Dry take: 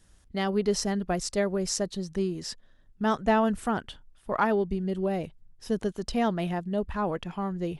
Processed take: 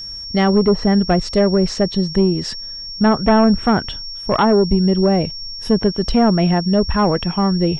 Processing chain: treble ducked by the level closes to 1000 Hz, closed at -20.5 dBFS; sine folder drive 5 dB, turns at -13 dBFS; tone controls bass +4 dB, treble -5 dB; whine 5500 Hz -32 dBFS; gain +4 dB

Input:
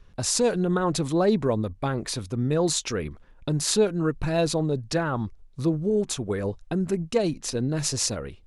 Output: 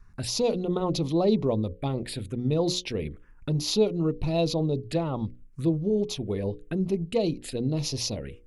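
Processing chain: envelope phaser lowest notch 520 Hz, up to 1600 Hz, full sweep at -23 dBFS; notches 60/120/180/240/300/360/420/480/540 Hz

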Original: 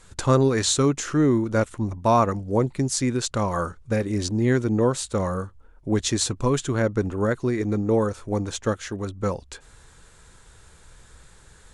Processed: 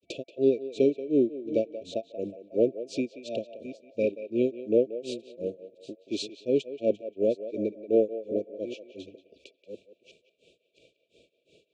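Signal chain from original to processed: reverse delay 0.679 s, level -13.5 dB; grains 0.243 s, grains 2.8/s, pitch spread up and down by 0 st; in parallel at -7 dB: soft clip -23.5 dBFS, distortion -8 dB; on the sum: FFT band-reject 680–2300 Hz; Chebyshev band-pass 340–2700 Hz, order 2; on a send: narrowing echo 0.181 s, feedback 63%, band-pass 1100 Hz, level -9 dB

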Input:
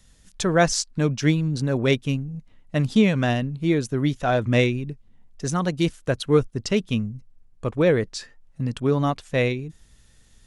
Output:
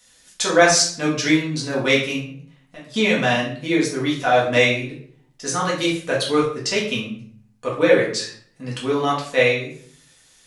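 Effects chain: HPF 1000 Hz 6 dB/oct; 2.21–2.94 compressor 3:1, threshold -53 dBFS, peak gain reduction 19.5 dB; reverb RT60 0.55 s, pre-delay 4 ms, DRR -5 dB; gain +3 dB

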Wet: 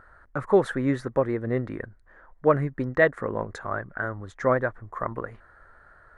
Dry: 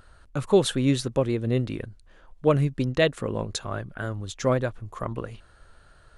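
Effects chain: EQ curve 140 Hz 0 dB, 1900 Hz +12 dB, 2700 Hz -11 dB; gain -5 dB

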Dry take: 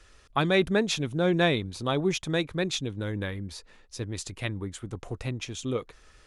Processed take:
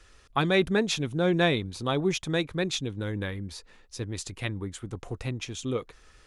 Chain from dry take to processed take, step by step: notch 610 Hz, Q 15

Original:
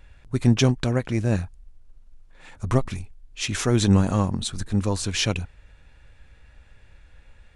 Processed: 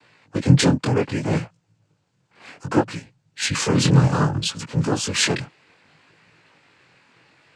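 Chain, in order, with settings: frequency shift -78 Hz; noise vocoder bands 8; chorus 0.64 Hz, delay 17.5 ms, depth 6 ms; gain +8.5 dB

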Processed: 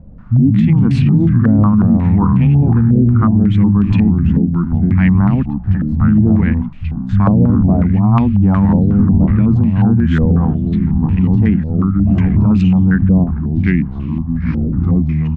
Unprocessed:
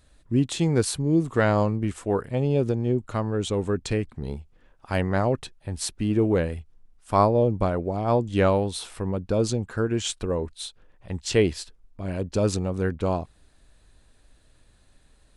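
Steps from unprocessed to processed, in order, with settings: Wiener smoothing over 9 samples; bands offset in time lows, highs 70 ms, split 170 Hz; echoes that change speed 80 ms, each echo -3 st, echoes 3, each echo -6 dB; bell 570 Hz -11.5 dB 0.43 oct; added noise pink -56 dBFS; resonant low shelf 290 Hz +12 dB, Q 3; limiter -9.5 dBFS, peak gain reduction 9.5 dB; stepped low-pass 5.5 Hz 520–2600 Hz; gain +5 dB

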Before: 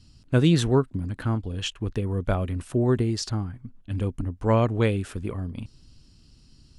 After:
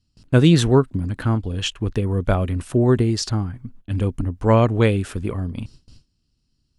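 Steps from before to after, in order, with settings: gate with hold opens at -41 dBFS; gain +5.5 dB

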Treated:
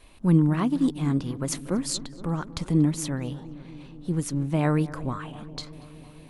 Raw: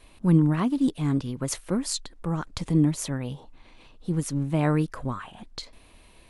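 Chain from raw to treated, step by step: darkening echo 0.236 s, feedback 79%, low-pass 1900 Hz, level -17 dB

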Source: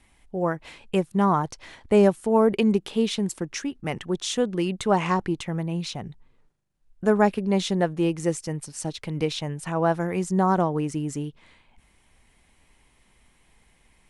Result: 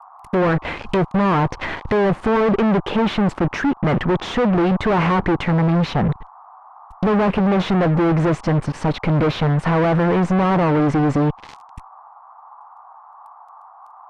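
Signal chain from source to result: fuzz box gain 42 dB, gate -49 dBFS; band noise 730–1200 Hz -42 dBFS; treble ducked by the level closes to 1700 Hz, closed at -16.5 dBFS; gain -1.5 dB

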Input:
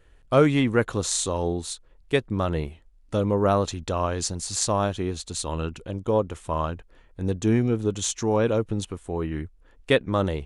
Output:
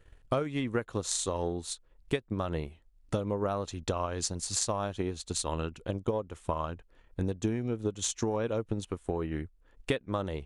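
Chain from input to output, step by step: transient shaper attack +8 dB, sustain -4 dB; compressor 6:1, threshold -23 dBFS, peak gain reduction 14.5 dB; gain -4 dB

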